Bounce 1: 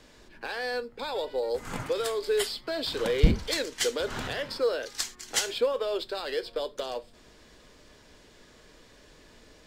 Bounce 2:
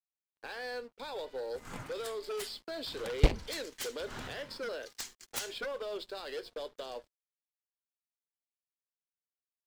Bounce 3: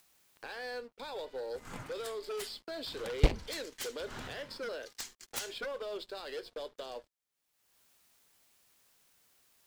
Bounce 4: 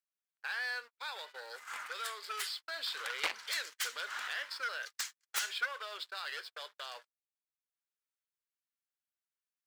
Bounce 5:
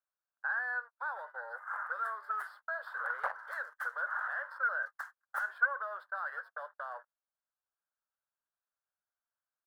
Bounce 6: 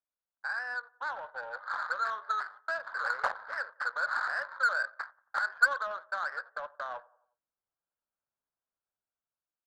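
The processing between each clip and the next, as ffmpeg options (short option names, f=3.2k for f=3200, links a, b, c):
-af "agate=range=-10dB:threshold=-42dB:ratio=16:detection=peak,aeval=exprs='sgn(val(0))*max(abs(val(0))-0.00251,0)':c=same,aeval=exprs='0.473*(cos(1*acos(clip(val(0)/0.473,-1,1)))-cos(1*PI/2))+0.119*(cos(7*acos(clip(val(0)/0.473,-1,1)))-cos(7*PI/2))':c=same,volume=-4dB"
-af "acompressor=mode=upward:threshold=-43dB:ratio=2.5,volume=-1dB"
-filter_complex "[0:a]agate=range=-35dB:threshold=-47dB:ratio=16:detection=peak,highpass=f=1.4k:t=q:w=1.8,asplit=2[a][b];[b]aeval=exprs='0.0398*(abs(mod(val(0)/0.0398+3,4)-2)-1)':c=same,volume=-6dB[c];[a][c]amix=inputs=2:normalize=0"
-af "firequalizer=gain_entry='entry(110,0);entry(280,-21);entry(560,8);entry(1600,10);entry(2300,-24);entry(7200,-25);entry(10000,-15)':delay=0.05:min_phase=1,volume=-3dB"
-filter_complex "[0:a]dynaudnorm=f=230:g=9:m=5dB,asplit=2[a][b];[b]adelay=90,lowpass=f=3.9k:p=1,volume=-19.5dB,asplit=2[c][d];[d]adelay=90,lowpass=f=3.9k:p=1,volume=0.49,asplit=2[e][f];[f]adelay=90,lowpass=f=3.9k:p=1,volume=0.49,asplit=2[g][h];[h]adelay=90,lowpass=f=3.9k:p=1,volume=0.49[i];[a][c][e][g][i]amix=inputs=5:normalize=0,adynamicsmooth=sensitivity=3.5:basefreq=1.2k"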